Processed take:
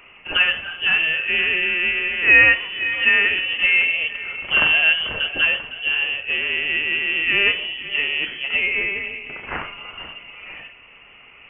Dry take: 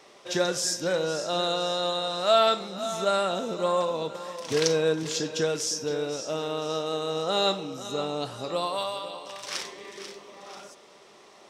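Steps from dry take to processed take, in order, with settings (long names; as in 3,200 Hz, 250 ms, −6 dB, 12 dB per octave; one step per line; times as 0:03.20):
dynamic equaliser 1,700 Hz, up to +5 dB, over −42 dBFS, Q 1.1
voice inversion scrambler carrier 3,200 Hz
level +7 dB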